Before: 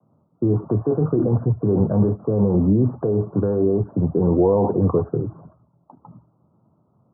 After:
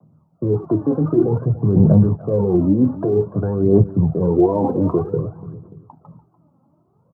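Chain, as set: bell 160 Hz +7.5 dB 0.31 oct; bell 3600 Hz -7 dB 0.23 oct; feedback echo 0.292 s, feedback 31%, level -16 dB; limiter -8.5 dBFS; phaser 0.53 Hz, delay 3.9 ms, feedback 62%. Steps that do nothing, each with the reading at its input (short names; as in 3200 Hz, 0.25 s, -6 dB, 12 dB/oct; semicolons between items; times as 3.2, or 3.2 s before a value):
bell 3600 Hz: input band ends at 960 Hz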